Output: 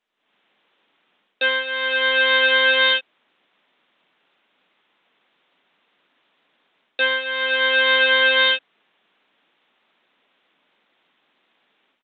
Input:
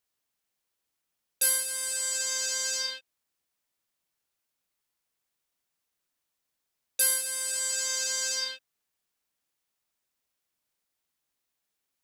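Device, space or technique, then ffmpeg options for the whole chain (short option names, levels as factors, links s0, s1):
Bluetooth headset: -af "highpass=f=190:w=0.5412,highpass=f=190:w=1.3066,dynaudnorm=f=170:g=3:m=5.96,aresample=8000,aresample=44100,volume=2.66" -ar 16000 -c:a sbc -b:a 64k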